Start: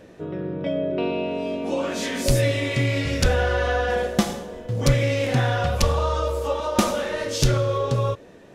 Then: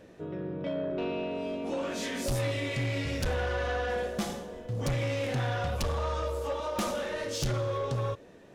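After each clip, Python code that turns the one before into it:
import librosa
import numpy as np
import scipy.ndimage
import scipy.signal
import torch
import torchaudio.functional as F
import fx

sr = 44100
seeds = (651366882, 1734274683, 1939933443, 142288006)

y = 10.0 ** (-19.0 / 20.0) * np.tanh(x / 10.0 ** (-19.0 / 20.0))
y = y * 10.0 ** (-6.0 / 20.0)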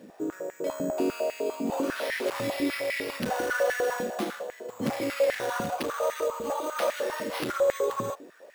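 y = np.repeat(x[::6], 6)[:len(x)]
y = fx.filter_held_highpass(y, sr, hz=10.0, low_hz=220.0, high_hz=1900.0)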